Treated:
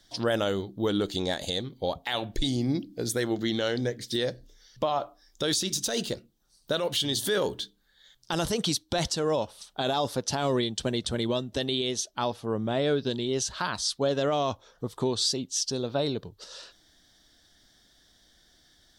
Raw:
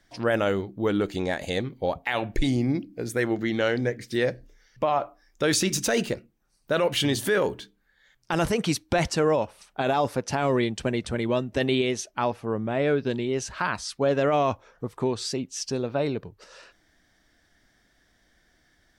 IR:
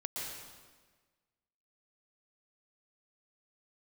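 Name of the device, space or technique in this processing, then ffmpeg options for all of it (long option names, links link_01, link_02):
over-bright horn tweeter: -af "highshelf=frequency=2900:width_type=q:width=3:gain=6,alimiter=limit=-16.5dB:level=0:latency=1:release=472"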